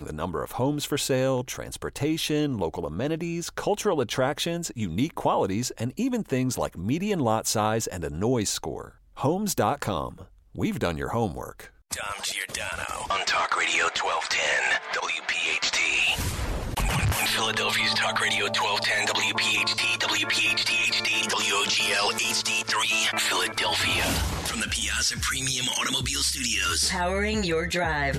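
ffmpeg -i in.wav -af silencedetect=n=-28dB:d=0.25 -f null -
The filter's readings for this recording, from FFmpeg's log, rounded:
silence_start: 8.82
silence_end: 9.21 | silence_duration: 0.39
silence_start: 10.09
silence_end: 10.58 | silence_duration: 0.49
silence_start: 11.61
silence_end: 11.93 | silence_duration: 0.32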